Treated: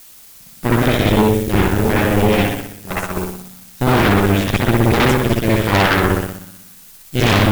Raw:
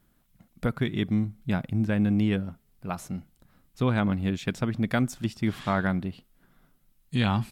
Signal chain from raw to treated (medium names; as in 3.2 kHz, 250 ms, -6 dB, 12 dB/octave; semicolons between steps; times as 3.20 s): spring tank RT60 1.1 s, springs 60 ms, chirp 75 ms, DRR -7.5 dB; added noise blue -41 dBFS; Chebyshev shaper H 8 -6 dB, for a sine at -4 dBFS; trim -1 dB